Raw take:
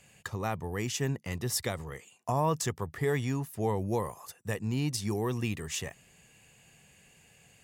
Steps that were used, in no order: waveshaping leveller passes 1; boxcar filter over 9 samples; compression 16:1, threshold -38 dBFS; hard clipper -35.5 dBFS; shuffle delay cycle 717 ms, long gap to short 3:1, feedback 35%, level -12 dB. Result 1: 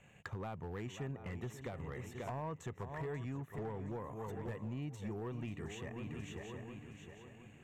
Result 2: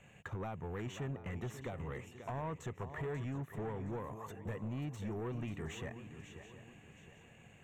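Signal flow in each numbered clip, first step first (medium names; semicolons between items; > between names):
waveshaping leveller > shuffle delay > compression > boxcar filter > hard clipper; compression > waveshaping leveller > shuffle delay > hard clipper > boxcar filter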